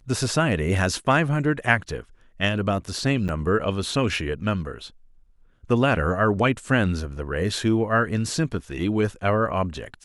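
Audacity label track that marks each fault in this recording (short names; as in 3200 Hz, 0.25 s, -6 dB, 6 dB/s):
3.280000	3.290000	gap 9.3 ms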